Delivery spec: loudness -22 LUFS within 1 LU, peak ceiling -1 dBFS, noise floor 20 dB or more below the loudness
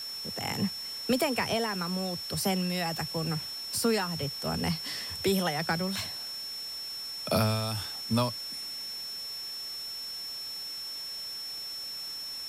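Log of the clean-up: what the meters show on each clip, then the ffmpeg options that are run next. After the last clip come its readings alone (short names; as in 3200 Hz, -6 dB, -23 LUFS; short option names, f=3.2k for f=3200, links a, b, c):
steady tone 5400 Hz; tone level -36 dBFS; noise floor -39 dBFS; noise floor target -52 dBFS; loudness -31.5 LUFS; peak -15.0 dBFS; loudness target -22.0 LUFS
-> -af "bandreject=f=5.4k:w=30"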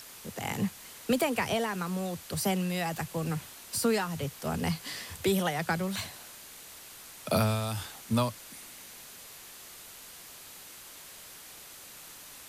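steady tone none; noise floor -49 dBFS; noise floor target -52 dBFS
-> -af "afftdn=nr=6:nf=-49"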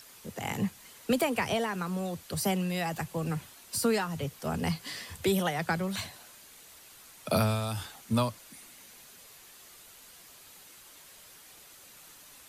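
noise floor -53 dBFS; loudness -31.5 LUFS; peak -15.5 dBFS; loudness target -22.0 LUFS
-> -af "volume=9.5dB"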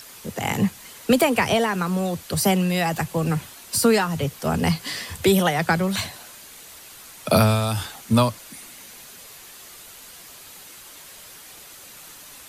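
loudness -22.0 LUFS; peak -6.0 dBFS; noise floor -44 dBFS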